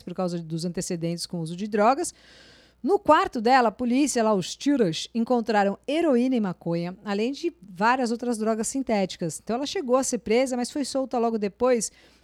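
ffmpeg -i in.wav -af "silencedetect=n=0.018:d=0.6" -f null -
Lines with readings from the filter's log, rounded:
silence_start: 2.10
silence_end: 2.84 | silence_duration: 0.74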